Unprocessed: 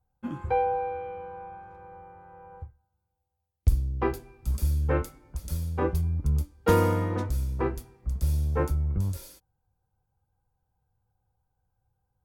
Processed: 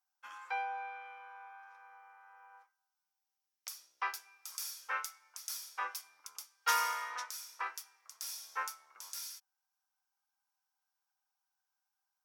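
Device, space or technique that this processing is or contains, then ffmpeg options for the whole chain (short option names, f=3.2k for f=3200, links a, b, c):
headphones lying on a table: -af "highpass=f=1.1k:w=0.5412,highpass=f=1.1k:w=1.3066,equalizer=f=5.6k:t=o:w=0.32:g=11,volume=1dB"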